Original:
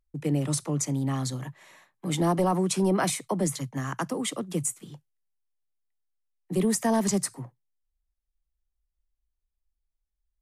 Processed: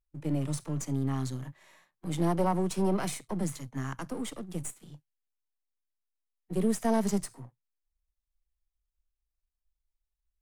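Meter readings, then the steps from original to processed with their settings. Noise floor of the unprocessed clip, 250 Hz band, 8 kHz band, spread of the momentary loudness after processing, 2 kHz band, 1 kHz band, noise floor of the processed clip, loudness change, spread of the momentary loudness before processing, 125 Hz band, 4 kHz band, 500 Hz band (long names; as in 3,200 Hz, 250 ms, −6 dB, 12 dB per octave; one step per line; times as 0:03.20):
−83 dBFS, −3.5 dB, −10.0 dB, 14 LU, −7.0 dB, −4.5 dB, below −85 dBFS, −4.5 dB, 10 LU, −3.5 dB, −9.0 dB, −4.0 dB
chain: gain on one half-wave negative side −7 dB
harmonic and percussive parts rebalanced percussive −8 dB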